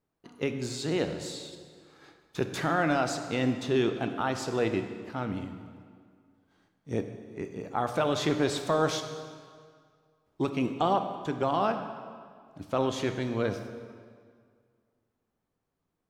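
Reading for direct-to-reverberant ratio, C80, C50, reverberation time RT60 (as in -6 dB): 7.0 dB, 9.5 dB, 8.0 dB, 2.0 s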